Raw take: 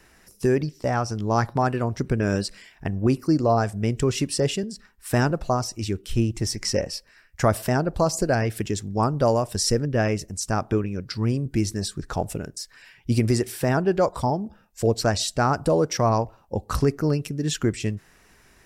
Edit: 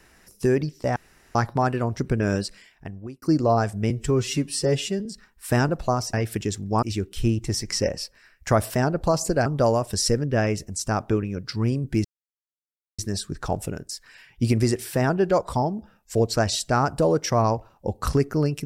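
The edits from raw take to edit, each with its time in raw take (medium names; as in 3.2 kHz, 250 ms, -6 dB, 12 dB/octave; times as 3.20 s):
0.96–1.35 s: room tone
2.30–3.22 s: fade out
3.90–4.67 s: stretch 1.5×
8.38–9.07 s: move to 5.75 s
11.66 s: insert silence 0.94 s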